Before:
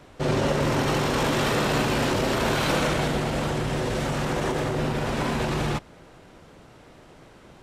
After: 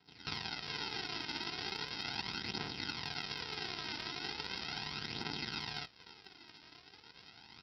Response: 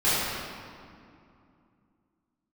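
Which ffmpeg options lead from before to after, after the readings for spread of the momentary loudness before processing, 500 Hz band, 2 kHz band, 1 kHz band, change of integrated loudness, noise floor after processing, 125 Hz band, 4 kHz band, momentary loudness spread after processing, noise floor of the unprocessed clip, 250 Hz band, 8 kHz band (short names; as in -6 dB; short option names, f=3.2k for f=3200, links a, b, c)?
4 LU, -26.0 dB, -13.0 dB, -18.0 dB, -15.0 dB, -61 dBFS, -24.0 dB, -6.5 dB, 16 LU, -50 dBFS, -22.0 dB, -21.5 dB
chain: -filter_complex "[0:a]acompressor=threshold=-32dB:ratio=5,acrossover=split=1900[a][b];[a]adelay=70[c];[c][b]amix=inputs=2:normalize=0,aresample=11025,acrusher=samples=19:mix=1:aa=0.000001,aresample=44100,highpass=58,aderivative,aphaser=in_gain=1:out_gain=1:delay=3.4:decay=0.45:speed=0.38:type=triangular,lowshelf=f=220:g=8.5,volume=11.5dB"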